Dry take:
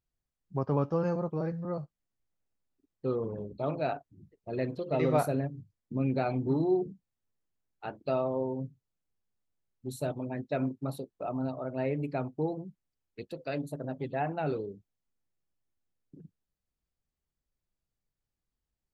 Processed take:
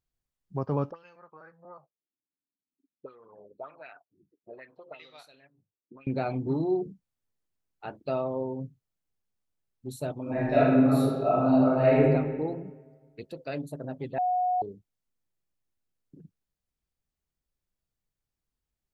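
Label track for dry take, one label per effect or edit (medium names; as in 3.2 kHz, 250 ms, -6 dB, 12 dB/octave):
0.910000	6.070000	auto-wah 260–3800 Hz, Q 3.8, up, full sweep at -24 dBFS
10.220000	12.010000	reverb throw, RT60 1.5 s, DRR -11 dB
14.180000	14.620000	bleep 728 Hz -23 dBFS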